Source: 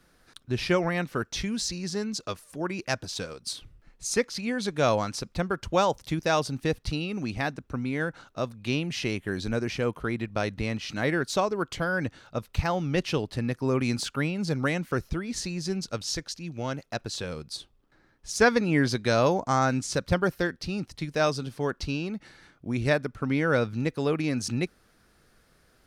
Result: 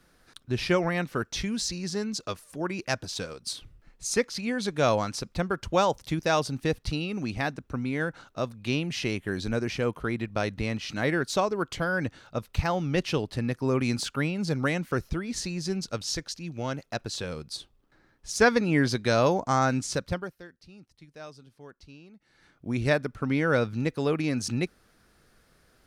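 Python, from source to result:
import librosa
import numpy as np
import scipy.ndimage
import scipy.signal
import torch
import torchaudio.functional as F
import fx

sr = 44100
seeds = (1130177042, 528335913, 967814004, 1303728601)

y = fx.edit(x, sr, fx.fade_down_up(start_s=19.89, length_s=2.81, db=-19.0, fade_s=0.44), tone=tone)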